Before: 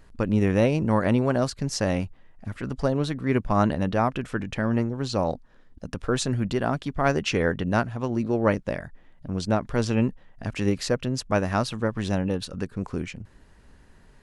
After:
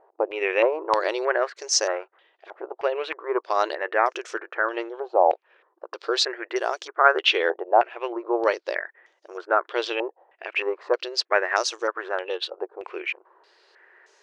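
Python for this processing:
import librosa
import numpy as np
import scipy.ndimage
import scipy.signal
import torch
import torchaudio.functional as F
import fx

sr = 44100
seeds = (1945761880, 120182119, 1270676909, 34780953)

y = fx.brickwall_highpass(x, sr, low_hz=330.0)
y = fx.filter_held_lowpass(y, sr, hz=3.2, low_hz=790.0, high_hz=6100.0)
y = F.gain(torch.from_numpy(y), 1.0).numpy()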